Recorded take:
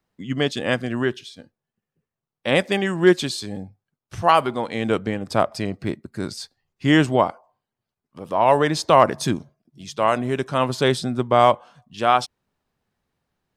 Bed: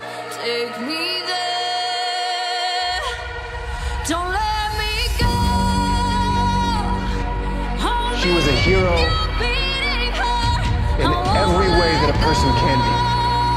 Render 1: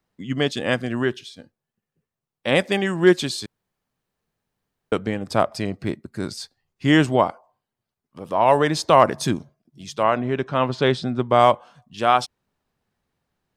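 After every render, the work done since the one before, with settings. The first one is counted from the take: 3.46–4.92 room tone; 10.02–11.27 LPF 2900 Hz -> 4900 Hz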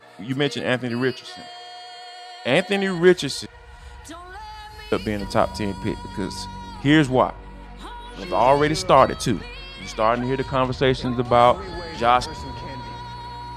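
add bed -17 dB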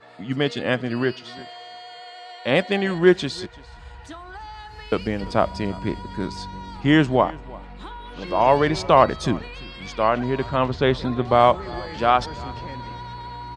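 air absorption 87 m; echo 0.341 s -22 dB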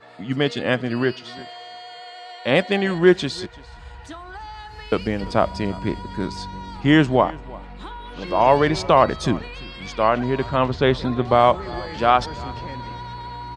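gain +1.5 dB; limiter -3 dBFS, peak gain reduction 2.5 dB

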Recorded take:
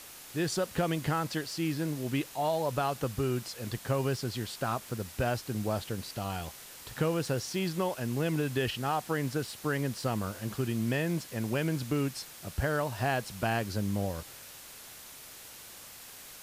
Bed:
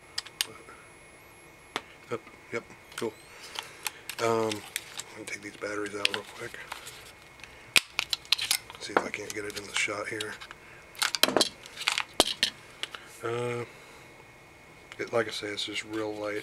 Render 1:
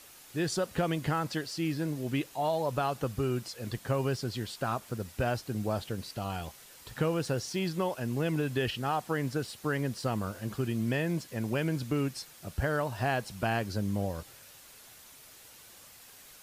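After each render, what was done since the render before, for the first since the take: denoiser 6 dB, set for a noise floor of -49 dBFS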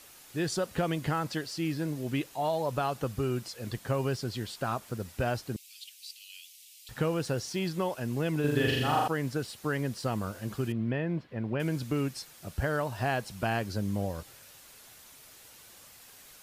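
5.56–6.89 steep high-pass 2400 Hz 48 dB/oct; 8.4–9.08 flutter echo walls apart 7 m, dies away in 1.2 s; 10.72–11.6 air absorption 390 m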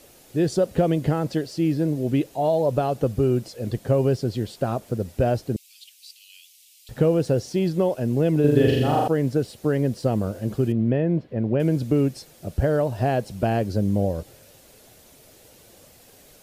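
resonant low shelf 790 Hz +9 dB, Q 1.5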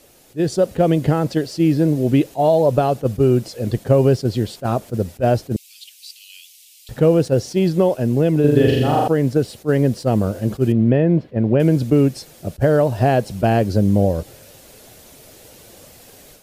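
AGC gain up to 7 dB; attack slew limiter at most 470 dB/s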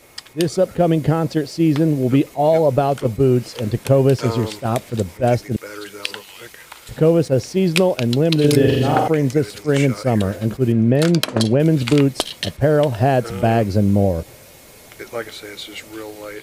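add bed +0.5 dB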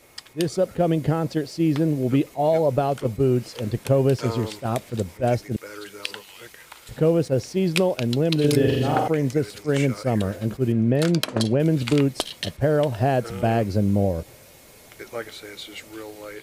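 gain -5 dB

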